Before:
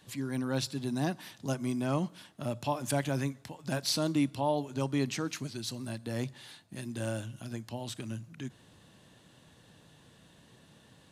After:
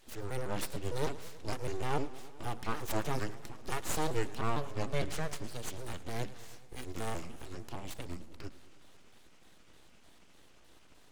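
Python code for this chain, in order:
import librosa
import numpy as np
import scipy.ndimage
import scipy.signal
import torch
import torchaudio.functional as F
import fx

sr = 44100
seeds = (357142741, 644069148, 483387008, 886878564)

y = fx.pitch_trill(x, sr, semitones=-4.5, every_ms=152)
y = np.abs(y)
y = fx.echo_warbled(y, sr, ms=107, feedback_pct=72, rate_hz=2.8, cents=153, wet_db=-17.5)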